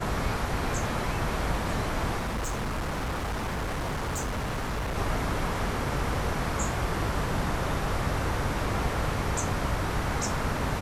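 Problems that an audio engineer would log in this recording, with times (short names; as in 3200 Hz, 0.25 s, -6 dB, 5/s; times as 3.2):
2.19–4.97 clipped -27.5 dBFS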